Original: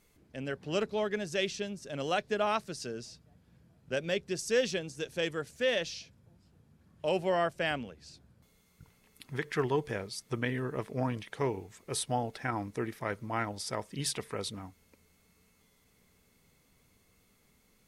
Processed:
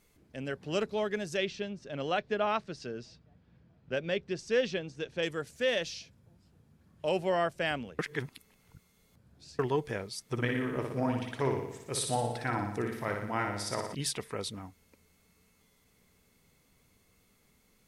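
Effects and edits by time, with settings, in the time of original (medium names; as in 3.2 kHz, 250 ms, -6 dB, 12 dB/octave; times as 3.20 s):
1.37–5.23 s: low-pass 3.9 kHz
7.99–9.59 s: reverse
10.25–13.95 s: flutter echo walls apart 10.1 m, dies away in 0.78 s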